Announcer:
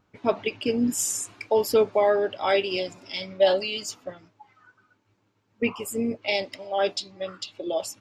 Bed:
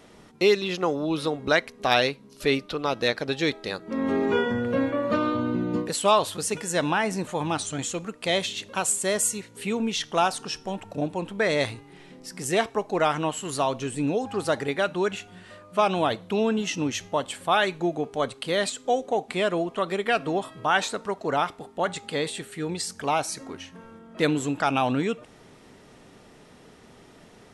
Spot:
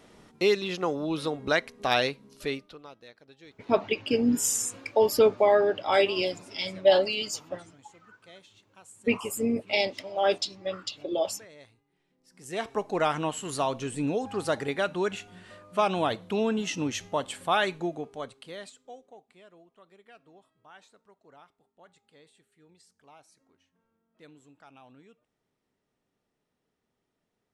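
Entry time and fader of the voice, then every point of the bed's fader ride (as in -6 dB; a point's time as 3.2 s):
3.45 s, 0.0 dB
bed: 2.34 s -3.5 dB
3.06 s -27 dB
12.16 s -27 dB
12.73 s -3 dB
17.71 s -3 dB
19.42 s -30 dB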